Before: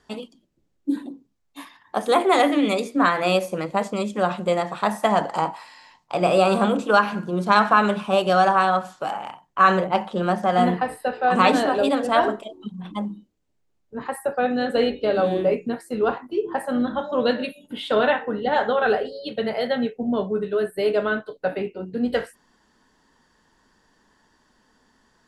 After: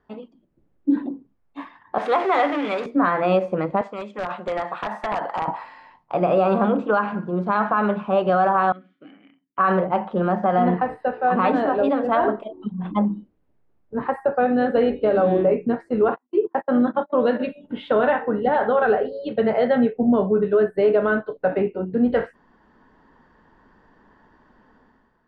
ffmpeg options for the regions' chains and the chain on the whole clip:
ffmpeg -i in.wav -filter_complex "[0:a]asettb=1/sr,asplit=3[link_01][link_02][link_03];[link_01]atrim=end=1.984[link_04];[link_02]atrim=start=1.98:end=2.86,asetpts=PTS-STARTPTS,afade=type=in:duration=0.004:curve=qsin,afade=type=out:start_time=0.876:duration=0.004:curve=qsin,aeval=exprs='val(0)+0.5*0.0794*sgn(val(0))':channel_layout=same,highpass=frequency=1200:poles=1[link_05];[link_03]atrim=start=2.856[link_06];[link_04][link_05]acrossfade=duration=0.004:curve1=hsin:curve2=qsin[link_07];[link_07][link_06]acrossfade=duration=0.004:curve1=qsin:curve2=hsin,asettb=1/sr,asplit=3[link_08][link_09][link_10];[link_08]atrim=end=3.814[link_11];[link_09]atrim=start=3.81:end=5.48,asetpts=PTS-STARTPTS,afade=type=in:duration=0.004:curve=qsin,afade=type=out:start_time=1.666:duration=0.004:curve=qsin,highpass=frequency=1300:poles=1,acompressor=threshold=-26dB:ratio=6:attack=3.2:release=140:knee=1:detection=peak,aeval=exprs='(mod(12.6*val(0)+1,2)-1)/12.6':channel_layout=same[link_12];[link_10]atrim=start=5.476[link_13];[link_11][link_12]acrossfade=duration=0.004:curve1=hsin:curve2=qsin[link_14];[link_14][link_13]acrossfade=duration=0.004:curve1=qsin:curve2=hsin,asettb=1/sr,asplit=3[link_15][link_16][link_17];[link_15]atrim=end=8.724[link_18];[link_16]atrim=start=8.72:end=9.58,asetpts=PTS-STARTPTS,afade=type=in:duration=0.004:curve=qsin,afade=type=out:start_time=0.856:duration=0.004:curve=qsin,asplit=3[link_19][link_20][link_21];[link_19]bandpass=frequency=270:width_type=q:width=8,volume=0dB[link_22];[link_20]bandpass=frequency=2290:width_type=q:width=8,volume=-6dB[link_23];[link_21]bandpass=frequency=3010:width_type=q:width=8,volume=-9dB[link_24];[link_22][link_23][link_24]amix=inputs=3:normalize=0,bandreject=frequency=670:width=17[link_25];[link_17]atrim=start=9.576[link_26];[link_18][link_25]acrossfade=duration=0.004:curve1=hsin:curve2=qsin[link_27];[link_27][link_26]acrossfade=duration=0.004:curve1=qsin:curve2=hsin,asettb=1/sr,asplit=3[link_28][link_29][link_30];[link_28]atrim=end=16.084[link_31];[link_29]atrim=start=16.08:end=17.47,asetpts=PTS-STARTPTS,afade=type=in:duration=0.004:curve=qsin,afade=type=out:start_time=1.386:duration=0.004:curve=qsin,agate=range=-40dB:threshold=-29dB:ratio=16:release=100:detection=peak,highpass=170,lowpass=7800[link_32];[link_30]atrim=start=17.466[link_33];[link_31][link_32]acrossfade=duration=0.004:curve1=hsin:curve2=qsin[link_34];[link_34][link_33]acrossfade=duration=0.004:curve1=qsin:curve2=hsin,lowpass=1600,dynaudnorm=framelen=100:gausssize=9:maxgain=11.5dB,alimiter=level_in=5.5dB:limit=-1dB:release=50:level=0:latency=1,volume=-9dB" out.wav

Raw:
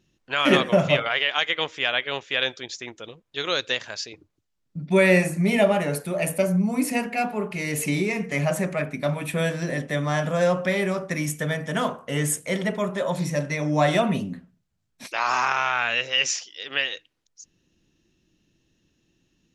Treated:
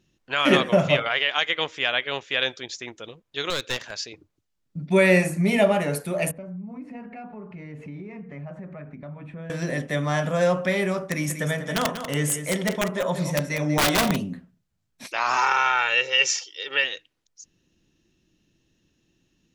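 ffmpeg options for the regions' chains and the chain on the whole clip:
ffmpeg -i in.wav -filter_complex "[0:a]asettb=1/sr,asplit=3[link_01][link_02][link_03];[link_01]atrim=end=3.504[link_04];[link_02]atrim=start=3.5:end=3.92,asetpts=PTS-STARTPTS,afade=type=in:duration=0.004:curve=qsin,afade=type=out:start_time=0.416:duration=0.004:curve=qsin,highpass=130,aeval=exprs='clip(val(0),-1,0.0282)':channel_layout=same[link_05];[link_03]atrim=start=3.916[link_06];[link_04][link_05]acrossfade=duration=0.004:curve1=hsin:curve2=qsin[link_07];[link_07][link_06]acrossfade=duration=0.004:curve1=qsin:curve2=hsin,asettb=1/sr,asplit=3[link_08][link_09][link_10];[link_08]atrim=end=6.314[link_11];[link_09]atrim=start=6.31:end=9.5,asetpts=PTS-STARTPTS,afade=type=in:duration=0.004:curve=qsin,afade=type=out:start_time=3.186:duration=0.004:curve=qsin,lowpass=1100,equalizer=frequency=550:width_type=o:width=2.4:gain=-7.5,acompressor=threshold=-37dB:ratio=3:attack=3.2:release=140:knee=1:detection=peak[link_12];[link_10]atrim=start=9.496[link_13];[link_11][link_12]acrossfade=duration=0.004:curve1=hsin:curve2=qsin[link_14];[link_14][link_13]acrossfade=duration=0.004:curve1=qsin:curve2=hsin,asettb=1/sr,asplit=3[link_15][link_16][link_17];[link_15]atrim=end=11.044[link_18];[link_16]atrim=start=11.04:end=14.16,asetpts=PTS-STARTPTS,afade=type=in:duration=0.004:curve=qsin,afade=type=out:start_time=3.116:duration=0.004:curve=qsin,aeval=exprs='(mod(5.31*val(0)+1,2)-1)/5.31':channel_layout=same,aecho=1:1:191:0.316,atrim=end_sample=137592[link_19];[link_17]atrim=start=14.156[link_20];[link_18][link_19]acrossfade=duration=0.004:curve1=hsin:curve2=qsin[link_21];[link_21][link_20]acrossfade=duration=0.004:curve1=qsin:curve2=hsin,asettb=1/sr,asplit=3[link_22][link_23][link_24];[link_22]atrim=end=15.374[link_25];[link_23]atrim=start=15.37:end=16.84,asetpts=PTS-STARTPTS,afade=type=in:duration=0.004:curve=qsin,afade=type=out:start_time=1.466:duration=0.004:curve=qsin,highpass=190,aecho=1:1:2.2:0.76,atrim=end_sample=64827[link_26];[link_24]atrim=start=16.836[link_27];[link_25][link_26]acrossfade=duration=0.004:curve1=hsin:curve2=qsin[link_28];[link_28][link_27]acrossfade=duration=0.004:curve1=qsin:curve2=hsin" out.wav

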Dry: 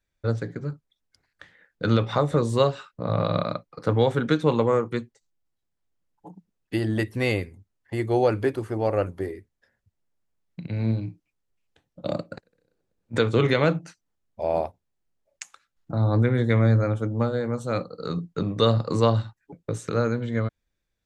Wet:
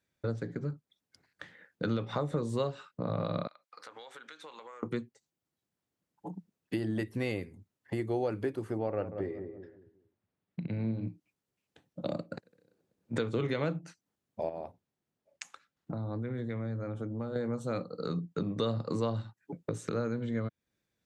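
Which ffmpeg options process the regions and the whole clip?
ffmpeg -i in.wav -filter_complex "[0:a]asettb=1/sr,asplit=3[link_01][link_02][link_03];[link_01]atrim=end=3.474[link_04];[link_02]atrim=start=3.47:end=4.83,asetpts=PTS-STARTPTS,afade=type=in:duration=0.004:curve=qsin,afade=type=out:start_time=1.356:duration=0.004:curve=qsin,highpass=1200,acompressor=threshold=-45dB:ratio=16:attack=3.2:release=140:knee=1:detection=peak[link_05];[link_03]atrim=start=4.826[link_06];[link_04][link_05]acrossfade=duration=0.004:curve1=hsin:curve2=qsin[link_07];[link_07][link_06]acrossfade=duration=0.004:curve1=qsin:curve2=hsin,asettb=1/sr,asplit=3[link_08][link_09][link_10];[link_08]atrim=end=8.794[link_11];[link_09]atrim=start=8.79:end=11.08,asetpts=PTS-STARTPTS,afade=type=in:duration=0.004:curve=qsin,afade=type=out:start_time=2.286:duration=0.004:curve=qsin,lowpass=3400,asplit=2[link_12][link_13];[link_13]adelay=187,lowpass=frequency=900:poles=1,volume=-11dB,asplit=2[link_14][link_15];[link_15]adelay=187,lowpass=frequency=900:poles=1,volume=0.33,asplit=2[link_16][link_17];[link_17]adelay=187,lowpass=frequency=900:poles=1,volume=0.33,asplit=2[link_18][link_19];[link_19]adelay=187,lowpass=frequency=900:poles=1,volume=0.33[link_20];[link_12][link_14][link_16][link_18][link_20]amix=inputs=5:normalize=0,atrim=end_sample=100989[link_21];[link_10]atrim=start=11.076[link_22];[link_11][link_21]acrossfade=duration=0.004:curve1=hsin:curve2=qsin[link_23];[link_23][link_22]acrossfade=duration=0.004:curve1=qsin:curve2=hsin,asettb=1/sr,asplit=3[link_24][link_25][link_26];[link_24]atrim=end=14.494[link_27];[link_25]atrim=start=14.49:end=17.36,asetpts=PTS-STARTPTS,afade=type=in:duration=0.004:curve=qsin,afade=type=out:start_time=2.866:duration=0.004:curve=qsin,highshelf=frequency=6800:gain=-8,acompressor=threshold=-35dB:ratio=2.5:attack=3.2:release=140:knee=1:detection=peak[link_28];[link_26]atrim=start=17.356[link_29];[link_27][link_28]acrossfade=duration=0.004:curve1=hsin:curve2=qsin[link_30];[link_30][link_29]acrossfade=duration=0.004:curve1=qsin:curve2=hsin,highpass=160,lowshelf=frequency=290:gain=8.5,acompressor=threshold=-35dB:ratio=2.5" out.wav

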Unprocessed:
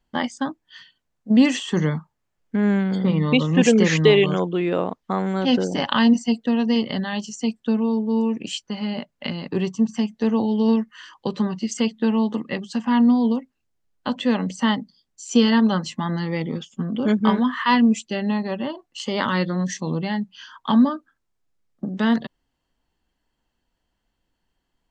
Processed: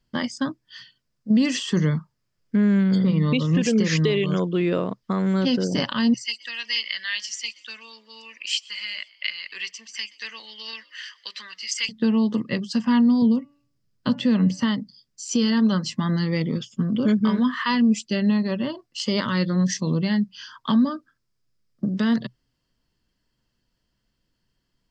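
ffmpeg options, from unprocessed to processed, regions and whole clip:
ffmpeg -i in.wav -filter_complex "[0:a]asettb=1/sr,asplit=3[link_01][link_02][link_03];[link_01]atrim=end=6.144[link_04];[link_02]atrim=start=6.14:end=11.89,asetpts=PTS-STARTPTS,afade=type=in:duration=0.004:curve=qsin,afade=type=out:start_time=5.746:duration=0.004:curve=qsin,highpass=frequency=2100:width_type=q:width=2.9,asplit=5[link_05][link_06][link_07][link_08][link_09];[link_06]adelay=124,afreqshift=69,volume=-24dB[link_10];[link_07]adelay=248,afreqshift=138,volume=-28.3dB[link_11];[link_08]adelay=372,afreqshift=207,volume=-32.6dB[link_12];[link_09]adelay=496,afreqshift=276,volume=-36.9dB[link_13];[link_05][link_10][link_11][link_12][link_13]amix=inputs=5:normalize=0,atrim=end_sample=253575[link_14];[link_03]atrim=start=11.886[link_15];[link_04][link_14]acrossfade=duration=0.004:curve1=hsin:curve2=qsin[link_16];[link_16][link_15]acrossfade=duration=0.004:curve1=qsin:curve2=hsin,asettb=1/sr,asplit=3[link_17][link_18][link_19];[link_17]atrim=end=13.224[link_20];[link_18]atrim=start=13.22:end=14.63,asetpts=PTS-STARTPTS,afade=type=in:duration=0.004:curve=qsin,afade=type=out:start_time=1.406:duration=0.004:curve=qsin,acrossover=split=6700[link_21][link_22];[link_22]acompressor=threshold=-55dB:ratio=4:attack=1:release=60[link_23];[link_21][link_23]amix=inputs=2:normalize=0,equalizer=frequency=140:width_type=o:width=2.1:gain=8,bandreject=frequency=287.3:width_type=h:width=4,bandreject=frequency=574.6:width_type=h:width=4,bandreject=frequency=861.9:width_type=h:width=4,bandreject=frequency=1149.2:width_type=h:width=4,bandreject=frequency=1436.5:width_type=h:width=4,bandreject=frequency=1723.8:width_type=h:width=4,bandreject=frequency=2011.1:width_type=h:width=4,bandreject=frequency=2298.4:width_type=h:width=4,bandreject=frequency=2585.7:width_type=h:width=4,bandreject=frequency=2873:width_type=h:width=4[link_24];[link_19]atrim=start=14.626[link_25];[link_20][link_24]acrossfade=duration=0.004:curve1=hsin:curve2=qsin[link_26];[link_26][link_25]acrossfade=duration=0.004:curve1=qsin:curve2=hsin,equalizer=frequency=125:width_type=o:width=0.33:gain=11,equalizer=frequency=200:width_type=o:width=0.33:gain=4,equalizer=frequency=800:width_type=o:width=0.33:gain=-11,equalizer=frequency=5000:width_type=o:width=0.33:gain=11,alimiter=limit=-12dB:level=0:latency=1:release=207" out.wav

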